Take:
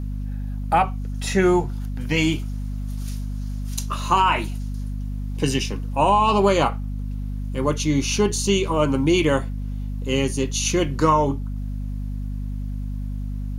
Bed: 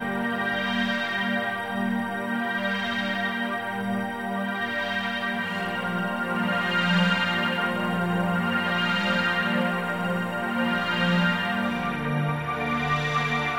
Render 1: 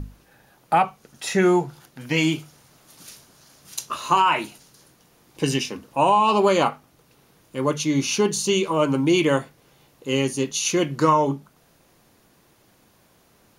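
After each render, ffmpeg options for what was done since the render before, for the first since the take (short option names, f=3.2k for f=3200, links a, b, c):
-af "bandreject=f=50:t=h:w=6,bandreject=f=100:t=h:w=6,bandreject=f=150:t=h:w=6,bandreject=f=200:t=h:w=6,bandreject=f=250:t=h:w=6"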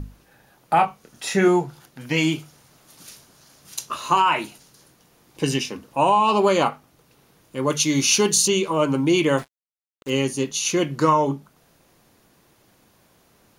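-filter_complex "[0:a]asettb=1/sr,asplit=3[a][b][c];[a]atrim=end=0.754[d];[b]atrim=start=0.75:end=1.48,asetpts=PTS-STARTPTS,afade=t=in:d=0.004:c=qsin,afade=t=out:st=0.726:d=0.004:c=qsin,asplit=2[e][f];[f]adelay=25,volume=-7dB[g];[e][g]amix=inputs=2:normalize=0,atrim=end_sample=32193[h];[c]atrim=start=1.476[i];[d][h]acrossfade=d=0.004:c1=hsin:c2=qsin[j];[j][i]acrossfade=d=0.004:c1=qsin:c2=hsin,asettb=1/sr,asplit=3[k][l][m];[k]atrim=end=7.704[n];[l]atrim=start=7.7:end=8.48,asetpts=PTS-STARTPTS,afade=t=in:d=0.004:c=qsin,afade=t=out:st=0.776:d=0.004:c=qsin,highshelf=f=2.4k:g=9.5[o];[m]atrim=start=8.476[p];[n][o]acrossfade=d=0.004:c1=hsin:c2=qsin[q];[q][p]acrossfade=d=0.004:c1=qsin:c2=hsin,asettb=1/sr,asplit=3[r][s][t];[r]atrim=end=9.384[u];[s]atrim=start=9.38:end=10.1,asetpts=PTS-STARTPTS,afade=t=in:d=0.004:c=qsin,afade=t=out:st=0.716:d=0.004:c=qsin,acrusher=bits=5:mix=0:aa=0.5[v];[t]atrim=start=10.096[w];[u][v]acrossfade=d=0.004:c1=hsin:c2=qsin[x];[x][w]acrossfade=d=0.004:c1=qsin:c2=hsin"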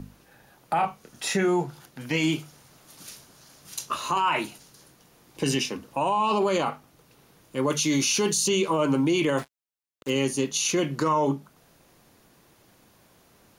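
-filter_complex "[0:a]acrossover=split=120[a][b];[a]acompressor=threshold=-48dB:ratio=6[c];[b]alimiter=limit=-15.5dB:level=0:latency=1:release=19[d];[c][d]amix=inputs=2:normalize=0"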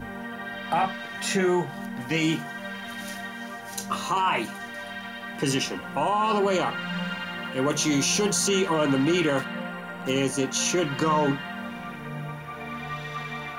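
-filter_complex "[1:a]volume=-9dB[a];[0:a][a]amix=inputs=2:normalize=0"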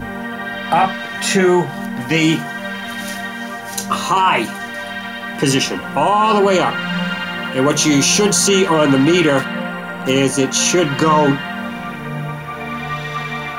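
-af "volume=10dB,alimiter=limit=-3dB:level=0:latency=1"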